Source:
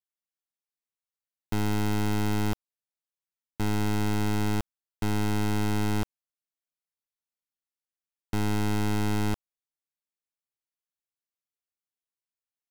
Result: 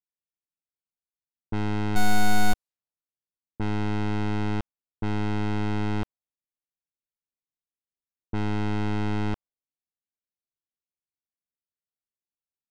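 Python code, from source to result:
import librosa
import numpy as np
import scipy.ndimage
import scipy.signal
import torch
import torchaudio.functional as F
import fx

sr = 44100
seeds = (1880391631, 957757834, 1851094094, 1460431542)

y = fx.room_flutter(x, sr, wall_m=4.2, rt60_s=0.89, at=(1.95, 2.52), fade=0.02)
y = fx.env_lowpass(y, sr, base_hz=390.0, full_db=-20.5)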